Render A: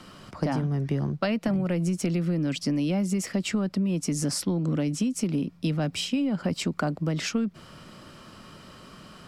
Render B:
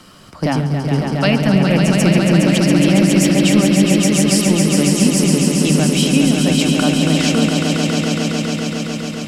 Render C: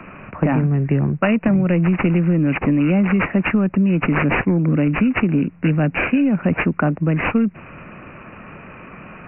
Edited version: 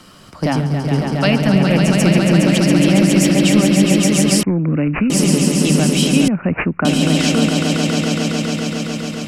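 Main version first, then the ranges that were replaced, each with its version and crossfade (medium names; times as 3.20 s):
B
4.43–5.10 s: from C
6.28–6.85 s: from C
not used: A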